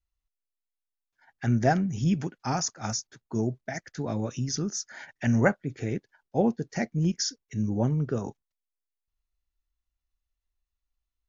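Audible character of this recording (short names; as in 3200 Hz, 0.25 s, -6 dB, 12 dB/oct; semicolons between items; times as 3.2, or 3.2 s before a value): noise floor -87 dBFS; spectral tilt -5.5 dB/oct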